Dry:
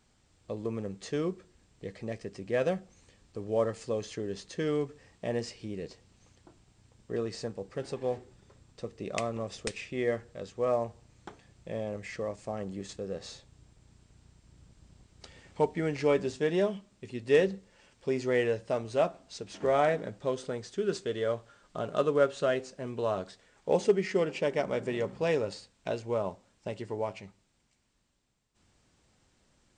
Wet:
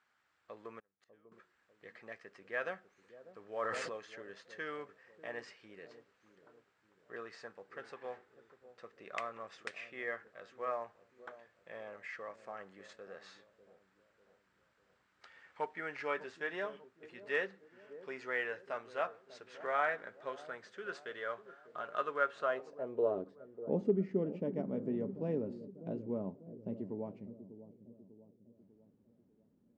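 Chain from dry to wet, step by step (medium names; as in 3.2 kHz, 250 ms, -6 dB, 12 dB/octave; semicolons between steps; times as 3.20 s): 0.79–1.32 s: inverted gate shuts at -33 dBFS, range -32 dB; band-pass sweep 1.5 kHz -> 230 Hz, 22.31–23.42 s; feedback echo behind a low-pass 596 ms, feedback 48%, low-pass 480 Hz, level -11 dB; 3.56–3.97 s: decay stretcher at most 26 dB/s; trim +3 dB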